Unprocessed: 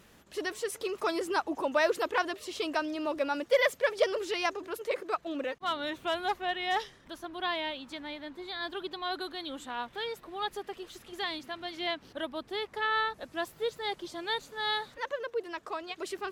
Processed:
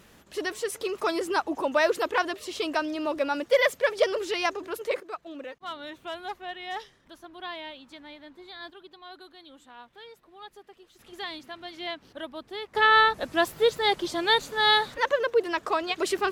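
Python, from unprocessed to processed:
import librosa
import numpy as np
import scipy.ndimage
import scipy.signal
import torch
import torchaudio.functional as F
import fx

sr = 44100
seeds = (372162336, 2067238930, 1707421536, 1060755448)

y = fx.gain(x, sr, db=fx.steps((0.0, 3.5), (5.0, -5.0), (8.7, -11.0), (10.99, -1.5), (12.75, 10.5)))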